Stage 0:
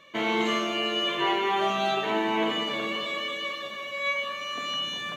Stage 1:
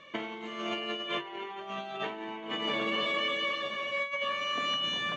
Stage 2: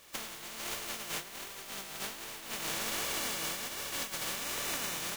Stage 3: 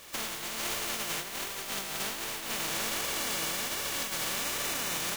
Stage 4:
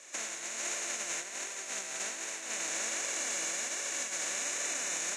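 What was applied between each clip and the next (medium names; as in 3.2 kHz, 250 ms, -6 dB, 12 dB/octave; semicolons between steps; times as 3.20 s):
low-pass 5.2 kHz 12 dB/octave; band-stop 4 kHz, Q 13; compressor with a negative ratio -31 dBFS, ratio -0.5; trim -2 dB
spectral contrast reduction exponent 0.15; flange 1.3 Hz, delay 1.6 ms, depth 5.1 ms, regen +42%
peak limiter -30.5 dBFS, peak gain reduction 8.5 dB; trim +7.5 dB
cabinet simulation 400–8200 Hz, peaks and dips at 440 Hz -5 dB, 860 Hz -7 dB, 1.2 kHz -8 dB, 3.2 kHz -10 dB, 4.7 kHz -9 dB, 6.8 kHz +9 dB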